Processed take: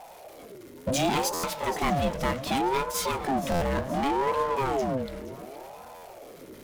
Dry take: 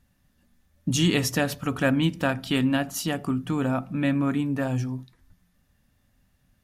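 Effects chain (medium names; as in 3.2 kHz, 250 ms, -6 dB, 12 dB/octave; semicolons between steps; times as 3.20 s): 1.20–3.20 s: transient shaper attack 0 dB, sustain -7 dB; power-law waveshaper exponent 0.5; on a send: echo whose repeats swap between lows and highs 236 ms, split 1.3 kHz, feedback 68%, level -10.5 dB; on the sum: buffer glitch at 1.33/3.51/5.94 s, samples 512, times 8; ring modulator with a swept carrier 540 Hz, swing 40%, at 0.68 Hz; trim -6 dB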